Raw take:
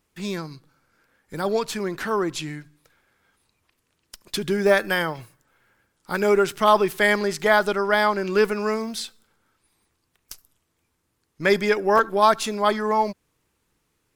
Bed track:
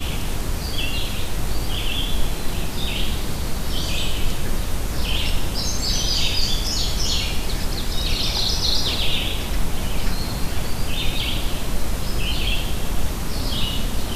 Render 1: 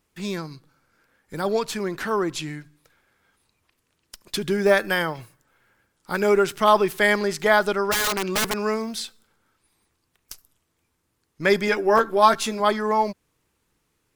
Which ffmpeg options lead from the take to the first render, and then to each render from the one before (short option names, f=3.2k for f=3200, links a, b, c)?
-filter_complex "[0:a]asplit=3[a][b][c];[a]afade=t=out:st=7.91:d=0.02[d];[b]aeval=exprs='(mod(7.5*val(0)+1,2)-1)/7.5':c=same,afade=t=in:st=7.91:d=0.02,afade=t=out:st=8.62:d=0.02[e];[c]afade=t=in:st=8.62:d=0.02[f];[d][e][f]amix=inputs=3:normalize=0,asettb=1/sr,asplit=3[g][h][i];[g]atrim=end=11.664[j];[h]atrim=start=11.66:end=12.6,asetpts=PTS-STARTPTS,afade=t=in:d=0.004:c=qsin,afade=t=out:st=0.936:d=0.004:c=qsin,asplit=2[k][l];[l]adelay=13,volume=-6.5dB[m];[k][m]amix=inputs=2:normalize=0,atrim=end_sample=41454[n];[i]atrim=start=12.596[o];[j][n]acrossfade=d=0.004:c1=hsin:c2=qsin[p];[p][o]acrossfade=d=0.004:c1=qsin:c2=hsin"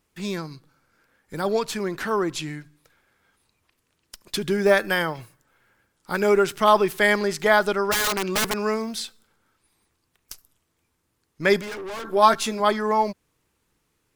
-filter_complex "[0:a]asettb=1/sr,asplit=3[a][b][c];[a]atrim=end=11.614[d];[b]atrim=start=11.61:end=12.05,asetpts=PTS-STARTPTS,afade=t=in:d=0.004:c=qsin,afade=t=out:st=0.436:d=0.004:c=qsin,aeval=exprs='(tanh(39.8*val(0)+0.15)-tanh(0.15))/39.8':c=same[e];[c]atrim=start=12.046[f];[d][e]acrossfade=d=0.004:c1=hsin:c2=qsin[g];[g][f]acrossfade=d=0.004:c1=qsin:c2=hsin"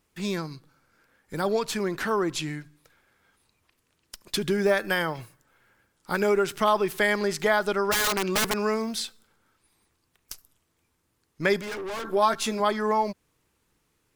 -af "acompressor=threshold=-22dB:ratio=2"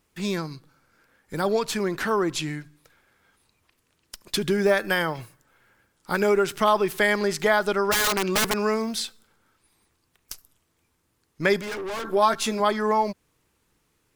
-af "volume=2dB"